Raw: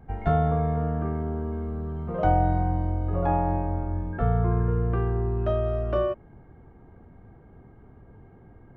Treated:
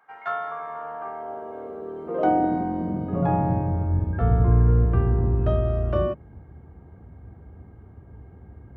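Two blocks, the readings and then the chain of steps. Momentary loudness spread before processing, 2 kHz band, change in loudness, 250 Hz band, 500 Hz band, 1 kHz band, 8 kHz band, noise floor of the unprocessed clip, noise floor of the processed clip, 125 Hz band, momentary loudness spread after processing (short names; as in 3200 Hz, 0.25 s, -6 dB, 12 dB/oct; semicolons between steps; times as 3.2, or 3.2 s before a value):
8 LU, +1.5 dB, +2.5 dB, +3.0 dB, +0.5 dB, +0.5 dB, n/a, -52 dBFS, -48 dBFS, +2.5 dB, 16 LU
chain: octaver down 1 oct, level -1 dB; high-pass sweep 1200 Hz -> 69 Hz, 0.59–4.25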